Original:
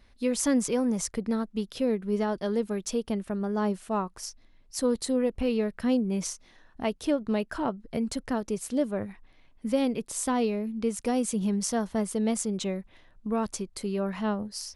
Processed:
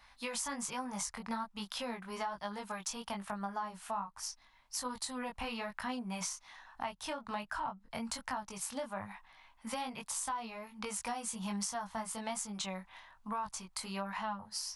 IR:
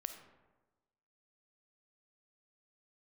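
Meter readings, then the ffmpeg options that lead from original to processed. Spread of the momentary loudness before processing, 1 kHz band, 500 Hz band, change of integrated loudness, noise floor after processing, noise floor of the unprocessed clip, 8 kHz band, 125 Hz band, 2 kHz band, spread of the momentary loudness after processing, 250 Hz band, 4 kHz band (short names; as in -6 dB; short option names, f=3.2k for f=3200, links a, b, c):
7 LU, -2.5 dB, -16.0 dB, -10.5 dB, -65 dBFS, -58 dBFS, -4.5 dB, -13.0 dB, -2.5 dB, 6 LU, -16.0 dB, -2.5 dB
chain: -filter_complex "[0:a]lowshelf=f=610:t=q:w=3:g=-13.5,flanger=delay=19.5:depth=2.8:speed=1.2,acrossover=split=190[a][b];[b]acompressor=threshold=-43dB:ratio=6[c];[a][c]amix=inputs=2:normalize=0,volume=6.5dB"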